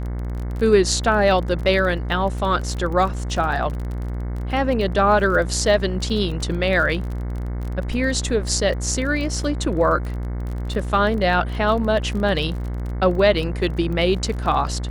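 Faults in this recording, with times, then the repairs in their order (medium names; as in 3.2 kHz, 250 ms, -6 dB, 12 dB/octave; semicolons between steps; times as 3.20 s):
buzz 60 Hz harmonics 37 -26 dBFS
crackle 29 per s -28 dBFS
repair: de-click; de-hum 60 Hz, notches 37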